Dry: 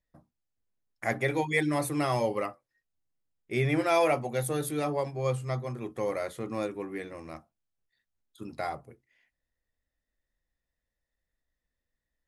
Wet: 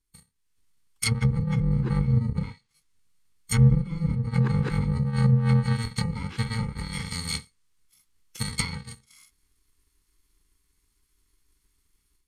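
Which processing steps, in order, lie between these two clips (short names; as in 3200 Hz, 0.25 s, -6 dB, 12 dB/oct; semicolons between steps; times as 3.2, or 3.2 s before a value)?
FFT order left unsorted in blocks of 128 samples; AGC gain up to 12 dB; treble ducked by the level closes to 450 Hz, closed at -13 dBFS; formant shift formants -4 st; Butterworth band-stop 640 Hz, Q 1.5; gain +5 dB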